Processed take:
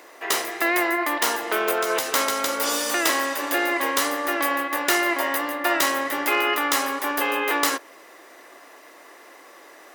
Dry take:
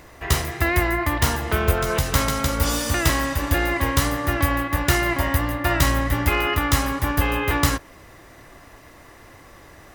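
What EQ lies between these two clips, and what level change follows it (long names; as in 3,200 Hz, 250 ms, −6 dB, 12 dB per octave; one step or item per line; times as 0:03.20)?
high-pass filter 330 Hz 24 dB per octave
+1.0 dB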